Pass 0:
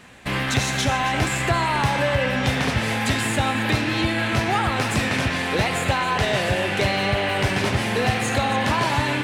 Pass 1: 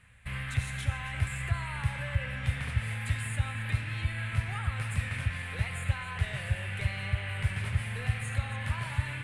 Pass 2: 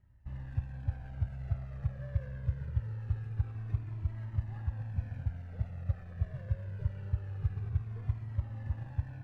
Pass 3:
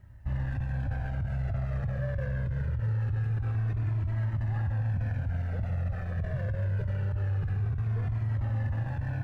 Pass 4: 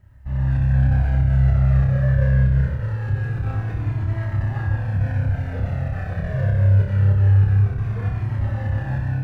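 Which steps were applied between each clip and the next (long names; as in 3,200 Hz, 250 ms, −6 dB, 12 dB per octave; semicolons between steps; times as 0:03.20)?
drawn EQ curve 100 Hz 0 dB, 330 Hz −29 dB, 490 Hz −20 dB, 770 Hz −22 dB, 1,300 Hz −13 dB, 2,200 Hz −9 dB, 5,900 Hz −24 dB, 9,500 Hz −6 dB, 14,000 Hz −20 dB; level −2 dB
running median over 41 samples; low-pass filter 1,400 Hz 6 dB per octave; flanger whose copies keep moving one way falling 0.24 Hz
graphic EQ with 15 bands 100 Hz +3 dB, 630 Hz +4 dB, 1,600 Hz +4 dB; compressor whose output falls as the input rises −32 dBFS, ratio −1; brickwall limiter −32 dBFS, peak gain reduction 8 dB; level +8.5 dB
automatic gain control gain up to 6.5 dB; on a send: flutter between parallel walls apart 5.2 metres, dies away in 0.55 s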